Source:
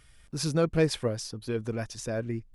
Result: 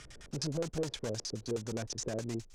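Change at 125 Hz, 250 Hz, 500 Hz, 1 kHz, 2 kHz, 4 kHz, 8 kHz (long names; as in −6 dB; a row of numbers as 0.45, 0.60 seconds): −8.0, −7.5, −8.0, −8.0, −10.0, −4.0, −2.0 decibels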